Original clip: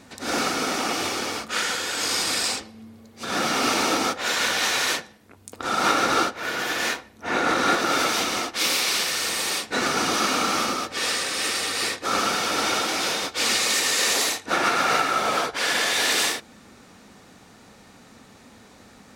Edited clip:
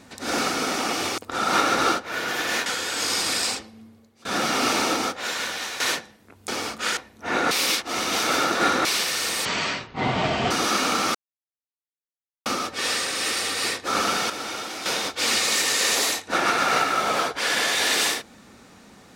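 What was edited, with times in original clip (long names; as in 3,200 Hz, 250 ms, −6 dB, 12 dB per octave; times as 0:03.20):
0:01.18–0:01.67: swap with 0:05.49–0:06.97
0:02.40–0:03.26: fade out equal-power, to −24 dB
0:03.76–0:04.81: fade out linear, to −10.5 dB
0:07.51–0:08.85: reverse
0:09.45–0:10.00: play speed 52%
0:10.64: splice in silence 1.31 s
0:12.48–0:13.04: clip gain −8 dB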